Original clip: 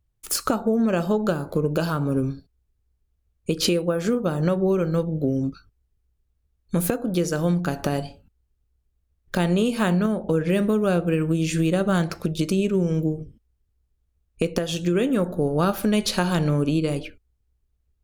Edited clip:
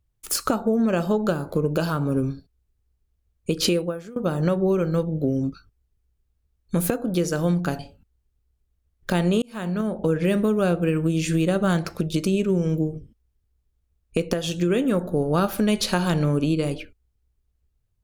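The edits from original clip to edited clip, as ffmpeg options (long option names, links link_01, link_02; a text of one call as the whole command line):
ffmpeg -i in.wav -filter_complex "[0:a]asplit=4[link_01][link_02][link_03][link_04];[link_01]atrim=end=4.16,asetpts=PTS-STARTPTS,afade=type=out:start_time=3.81:duration=0.35:curve=qua:silence=0.0944061[link_05];[link_02]atrim=start=4.16:end=7.792,asetpts=PTS-STARTPTS,afade=type=in:duration=0.004:curve=hsin:silence=0.0944061[link_06];[link_03]atrim=start=8.038:end=9.67,asetpts=PTS-STARTPTS,afade=type=out:start_time=1.628:duration=0.004:curve=hsin[link_07];[link_04]atrim=start=9.67,asetpts=PTS-STARTPTS,afade=type=in:duration=0.55[link_08];[link_05][link_06]concat=n=2:v=0:a=1[link_09];[link_07][link_08]concat=n=2:v=0:a=1[link_10];[link_09][link_10]acrossfade=duration=0.004:curve1=hsin:curve2=hsin" out.wav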